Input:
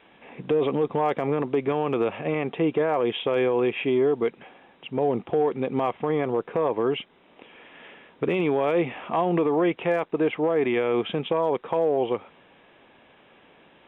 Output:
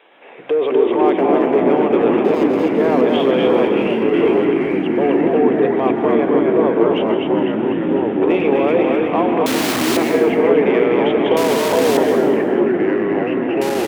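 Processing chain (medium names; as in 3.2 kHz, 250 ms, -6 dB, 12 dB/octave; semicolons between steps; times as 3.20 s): 2.24–2.64 s: median filter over 25 samples; resonant low shelf 280 Hz -12.5 dB, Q 1.5; frequency-shifting echo 250 ms, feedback 58%, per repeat -42 Hz, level -3 dB; in parallel at -11.5 dB: saturation -20.5 dBFS, distortion -11 dB; 3.65–4.14 s: on the sum: level held to a coarse grid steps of 24 dB; 9.46–9.97 s: integer overflow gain 19.5 dB; high-pass 130 Hz; plate-style reverb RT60 1.1 s, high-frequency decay 0.8×, pre-delay 115 ms, DRR 7.5 dB; ever faster or slower copies 117 ms, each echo -3 st, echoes 3; trim +2 dB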